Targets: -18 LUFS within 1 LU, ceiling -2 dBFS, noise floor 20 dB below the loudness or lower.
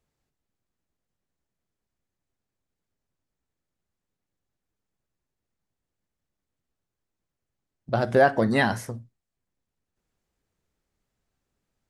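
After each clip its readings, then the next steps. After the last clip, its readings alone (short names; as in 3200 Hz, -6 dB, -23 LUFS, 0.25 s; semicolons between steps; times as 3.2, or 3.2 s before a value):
loudness -22.5 LUFS; peak -7.0 dBFS; loudness target -18.0 LUFS
-> gain +4.5 dB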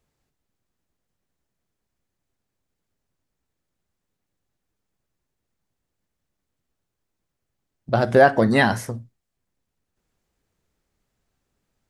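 loudness -18.0 LUFS; peak -2.5 dBFS; noise floor -81 dBFS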